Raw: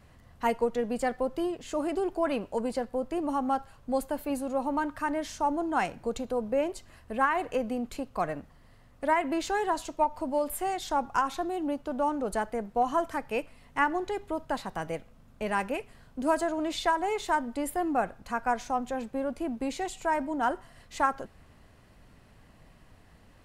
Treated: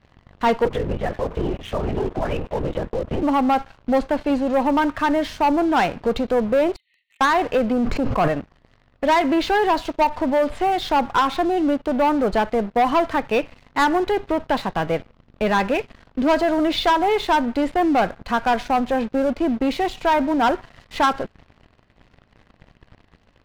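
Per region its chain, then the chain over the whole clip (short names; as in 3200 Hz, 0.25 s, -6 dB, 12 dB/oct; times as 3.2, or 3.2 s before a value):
0.65–3.23 compressor 4:1, threshold -33 dBFS + LPC vocoder at 8 kHz whisper
6.76–7.21 brick-wall FIR band-pass 1800–4500 Hz + compressor 12:1, threshold -54 dBFS
7.72–8.28 bell 3400 Hz -14.5 dB 0.9 oct + sustainer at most 24 dB/s
whole clip: LPF 4400 Hz 24 dB/oct; sample leveller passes 3; gain +1.5 dB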